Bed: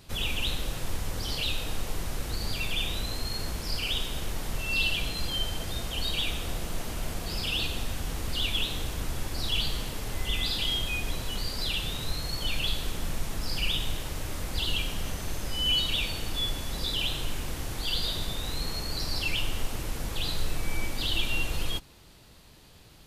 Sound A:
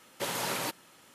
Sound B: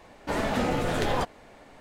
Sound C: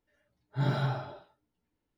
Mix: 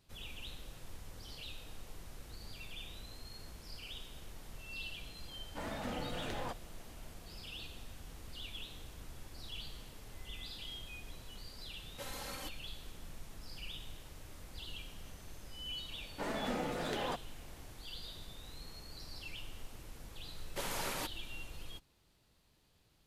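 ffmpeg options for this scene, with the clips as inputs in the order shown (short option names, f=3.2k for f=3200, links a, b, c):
-filter_complex "[2:a]asplit=2[a][b];[1:a]asplit=2[c][d];[0:a]volume=-17.5dB[e];[a]bandreject=f=400:w=5.8[f];[c]aecho=1:1:3.8:0.93[g];[b]highpass=f=140:w=0.5412,highpass=f=140:w=1.3066[h];[f]atrim=end=1.8,asetpts=PTS-STARTPTS,volume=-14dB,afade=t=in:d=0.004:c=hsin,afade=t=out:st=1.796:d=0.004:c=hsin,adelay=5280[i];[g]atrim=end=1.14,asetpts=PTS-STARTPTS,volume=-15.5dB,afade=t=in:d=0.004:c=hsin,afade=t=out:st=1.136:d=0.004:c=hsin,adelay=519498S[j];[h]atrim=end=1.8,asetpts=PTS-STARTPTS,volume=-10.5dB,afade=t=in:d=0.004:c=hsin,afade=t=out:st=1.796:d=0.004:c=hsin,adelay=15910[k];[d]atrim=end=1.14,asetpts=PTS-STARTPTS,volume=-6.5dB,afade=t=in:d=0.004:c=hsin,afade=t=out:st=1.136:d=0.004:c=hsin,adelay=897876S[l];[e][i][j][k][l]amix=inputs=5:normalize=0"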